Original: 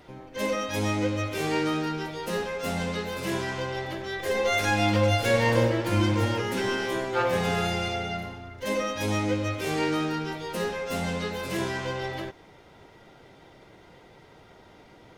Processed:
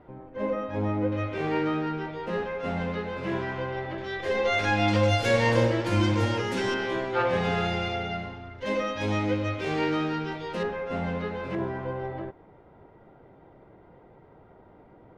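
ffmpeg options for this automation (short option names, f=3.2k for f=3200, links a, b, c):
-af "asetnsamples=n=441:p=0,asendcmd='1.12 lowpass f 2200;3.98 lowpass f 3900;4.88 lowpass f 7500;6.74 lowpass f 3700;10.63 lowpass f 1900;11.55 lowpass f 1100',lowpass=1.2k"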